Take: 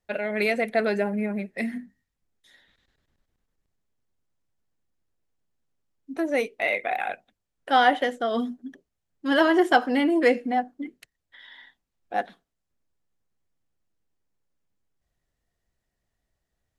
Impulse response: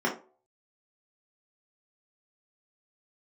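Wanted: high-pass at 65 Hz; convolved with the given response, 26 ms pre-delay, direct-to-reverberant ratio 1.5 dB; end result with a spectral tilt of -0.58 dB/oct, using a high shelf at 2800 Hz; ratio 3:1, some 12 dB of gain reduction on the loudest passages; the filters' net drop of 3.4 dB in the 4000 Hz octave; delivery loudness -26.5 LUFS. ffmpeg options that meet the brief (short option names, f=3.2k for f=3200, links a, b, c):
-filter_complex "[0:a]highpass=65,highshelf=f=2.8k:g=3.5,equalizer=f=4k:t=o:g=-8,acompressor=threshold=-31dB:ratio=3,asplit=2[a][b];[1:a]atrim=start_sample=2205,adelay=26[c];[b][c]afir=irnorm=-1:irlink=0,volume=-13dB[d];[a][d]amix=inputs=2:normalize=0,volume=3.5dB"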